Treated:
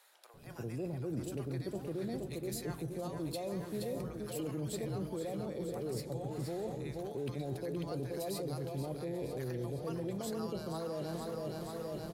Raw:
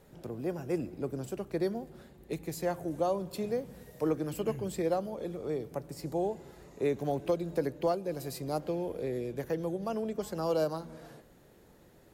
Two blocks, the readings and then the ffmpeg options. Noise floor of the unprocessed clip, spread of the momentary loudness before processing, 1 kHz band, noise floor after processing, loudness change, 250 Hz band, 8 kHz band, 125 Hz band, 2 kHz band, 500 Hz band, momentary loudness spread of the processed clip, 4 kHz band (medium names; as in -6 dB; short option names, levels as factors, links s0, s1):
-59 dBFS, 10 LU, -8.0 dB, -47 dBFS, -5.0 dB, -3.5 dB, +0.5 dB, +1.0 dB, -4.5 dB, -6.5 dB, 2 LU, 0.0 dB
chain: -filter_complex "[0:a]dynaudnorm=f=210:g=3:m=2.51,equalizer=f=125:t=o:w=0.33:g=9,equalizer=f=4000:t=o:w=0.33:g=6,equalizer=f=10000:t=o:w=0.33:g=6,asplit=2[s0][s1];[s1]aecho=0:1:473|946|1419|1892|2365|2838|3311:0.316|0.187|0.11|0.0649|0.0383|0.0226|0.0133[s2];[s0][s2]amix=inputs=2:normalize=0,alimiter=limit=0.112:level=0:latency=1:release=21,areverse,acompressor=threshold=0.0112:ratio=4,areverse,acrossover=split=800[s3][s4];[s3]adelay=340[s5];[s5][s4]amix=inputs=2:normalize=0,volume=1.19"